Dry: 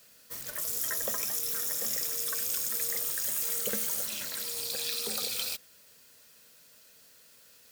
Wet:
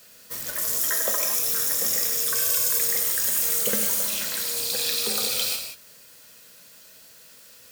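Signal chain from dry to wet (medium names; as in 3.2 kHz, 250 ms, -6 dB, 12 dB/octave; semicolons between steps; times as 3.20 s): 0.80–1.34 s: high-pass 240 Hz 12 dB/octave; 2.35–2.79 s: comb 1.9 ms, depth 58%; gated-style reverb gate 210 ms flat, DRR 3.5 dB; trim +6.5 dB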